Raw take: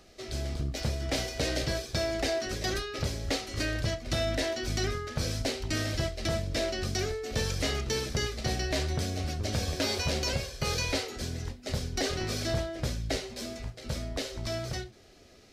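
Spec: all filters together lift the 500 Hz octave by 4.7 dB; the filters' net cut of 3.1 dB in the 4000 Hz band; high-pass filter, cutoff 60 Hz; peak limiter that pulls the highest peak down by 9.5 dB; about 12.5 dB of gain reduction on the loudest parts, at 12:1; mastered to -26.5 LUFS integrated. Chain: HPF 60 Hz; bell 500 Hz +6.5 dB; bell 4000 Hz -4 dB; compressor 12:1, threshold -37 dBFS; gain +17 dB; limiter -17 dBFS

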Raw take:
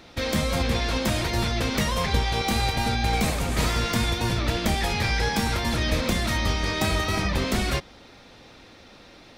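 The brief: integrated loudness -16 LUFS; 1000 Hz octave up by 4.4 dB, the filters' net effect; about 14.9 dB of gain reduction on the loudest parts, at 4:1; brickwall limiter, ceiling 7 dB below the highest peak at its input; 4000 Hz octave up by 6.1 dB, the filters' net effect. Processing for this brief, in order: bell 1000 Hz +5.5 dB; bell 4000 Hz +7 dB; compressor 4:1, threshold -36 dBFS; gain +22 dB; limiter -6.5 dBFS

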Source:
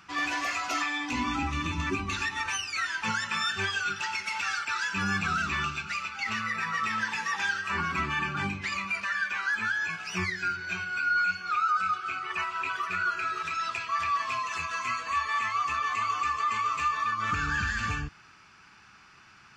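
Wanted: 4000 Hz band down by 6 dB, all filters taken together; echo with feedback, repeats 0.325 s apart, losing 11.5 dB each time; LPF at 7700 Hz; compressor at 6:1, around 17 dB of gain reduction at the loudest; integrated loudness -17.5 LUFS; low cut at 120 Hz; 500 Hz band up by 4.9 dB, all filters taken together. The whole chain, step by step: HPF 120 Hz; LPF 7700 Hz; bell 500 Hz +7.5 dB; bell 4000 Hz -8 dB; compressor 6:1, threshold -43 dBFS; feedback echo 0.325 s, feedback 27%, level -11.5 dB; gain +26 dB

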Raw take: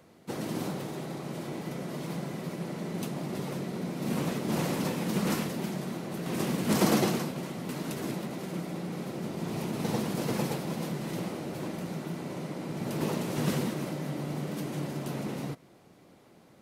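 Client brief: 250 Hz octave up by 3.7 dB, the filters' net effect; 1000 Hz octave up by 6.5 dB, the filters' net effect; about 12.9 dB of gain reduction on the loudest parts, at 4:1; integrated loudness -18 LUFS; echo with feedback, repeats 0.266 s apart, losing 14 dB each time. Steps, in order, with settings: bell 250 Hz +4.5 dB; bell 1000 Hz +8 dB; compressor 4:1, threshold -33 dBFS; feedback echo 0.266 s, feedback 20%, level -14 dB; gain +18 dB

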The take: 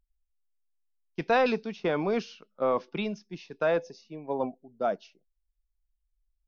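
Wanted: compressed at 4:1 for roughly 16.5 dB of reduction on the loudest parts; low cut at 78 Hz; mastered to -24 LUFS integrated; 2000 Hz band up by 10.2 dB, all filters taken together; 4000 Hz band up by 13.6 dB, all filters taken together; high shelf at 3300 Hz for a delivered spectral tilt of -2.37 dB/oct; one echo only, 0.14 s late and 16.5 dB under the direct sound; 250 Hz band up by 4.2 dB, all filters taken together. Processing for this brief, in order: HPF 78 Hz; bell 250 Hz +5 dB; bell 2000 Hz +8.5 dB; high shelf 3300 Hz +7 dB; bell 4000 Hz +9 dB; compressor 4:1, threshold -34 dBFS; echo 0.14 s -16.5 dB; gain +13.5 dB

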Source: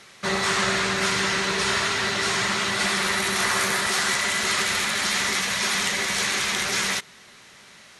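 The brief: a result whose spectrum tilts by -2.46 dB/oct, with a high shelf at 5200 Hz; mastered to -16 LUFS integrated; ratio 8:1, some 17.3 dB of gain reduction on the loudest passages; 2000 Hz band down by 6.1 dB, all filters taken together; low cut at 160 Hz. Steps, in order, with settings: HPF 160 Hz; bell 2000 Hz -8 dB; high shelf 5200 Hz +4 dB; compressor 8:1, threshold -40 dBFS; gain +24 dB

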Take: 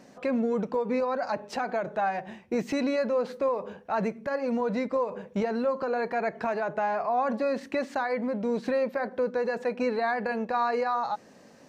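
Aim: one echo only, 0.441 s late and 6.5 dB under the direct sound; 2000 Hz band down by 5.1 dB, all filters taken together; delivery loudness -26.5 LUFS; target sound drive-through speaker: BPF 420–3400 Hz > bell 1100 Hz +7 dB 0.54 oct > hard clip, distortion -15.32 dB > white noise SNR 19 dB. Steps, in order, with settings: BPF 420–3400 Hz; bell 1100 Hz +7 dB 0.54 oct; bell 2000 Hz -8.5 dB; echo 0.441 s -6.5 dB; hard clip -23.5 dBFS; white noise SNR 19 dB; gain +3.5 dB

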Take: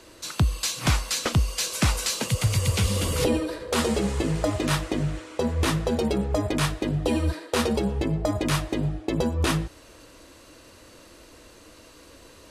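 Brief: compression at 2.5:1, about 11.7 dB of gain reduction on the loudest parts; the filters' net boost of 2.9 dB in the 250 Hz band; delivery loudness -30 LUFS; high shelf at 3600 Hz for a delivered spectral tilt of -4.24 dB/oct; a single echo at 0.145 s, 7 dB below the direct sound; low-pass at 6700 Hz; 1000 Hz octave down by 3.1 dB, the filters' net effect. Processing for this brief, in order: LPF 6700 Hz; bell 250 Hz +4 dB; bell 1000 Hz -5 dB; high shelf 3600 Hz +8.5 dB; compressor 2.5:1, threshold -34 dBFS; echo 0.145 s -7 dB; gain +2.5 dB

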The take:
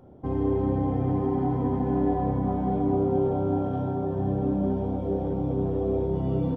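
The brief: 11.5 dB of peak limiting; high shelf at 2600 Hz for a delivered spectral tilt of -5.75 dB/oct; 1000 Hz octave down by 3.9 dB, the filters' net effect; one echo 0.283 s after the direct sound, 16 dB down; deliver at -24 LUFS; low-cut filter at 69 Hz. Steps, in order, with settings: HPF 69 Hz; bell 1000 Hz -5.5 dB; high shelf 2600 Hz -4 dB; limiter -25 dBFS; echo 0.283 s -16 dB; gain +8.5 dB

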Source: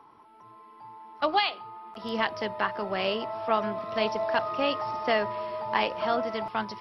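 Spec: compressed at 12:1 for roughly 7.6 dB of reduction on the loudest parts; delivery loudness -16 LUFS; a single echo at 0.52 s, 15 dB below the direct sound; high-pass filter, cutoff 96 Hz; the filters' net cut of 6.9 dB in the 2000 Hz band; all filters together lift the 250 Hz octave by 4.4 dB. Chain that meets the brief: HPF 96 Hz; bell 250 Hz +5.5 dB; bell 2000 Hz -9 dB; compressor 12:1, threshold -28 dBFS; echo 0.52 s -15 dB; gain +18 dB

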